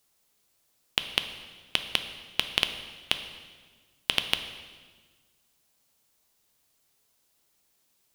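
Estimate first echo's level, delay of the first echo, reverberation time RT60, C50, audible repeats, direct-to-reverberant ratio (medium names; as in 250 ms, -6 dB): no echo, no echo, 1.5 s, 9.5 dB, no echo, 7.5 dB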